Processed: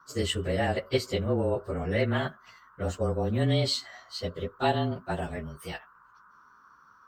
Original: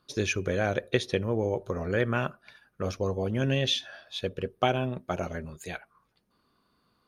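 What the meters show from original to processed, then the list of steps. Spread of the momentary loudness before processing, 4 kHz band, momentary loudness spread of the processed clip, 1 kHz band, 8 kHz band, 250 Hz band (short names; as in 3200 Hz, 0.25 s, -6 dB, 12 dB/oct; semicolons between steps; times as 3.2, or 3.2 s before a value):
10 LU, -0.5 dB, 11 LU, +0.5 dB, -0.5 dB, +0.5 dB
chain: inharmonic rescaling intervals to 108%; band noise 970–1500 Hz -60 dBFS; gain +2.5 dB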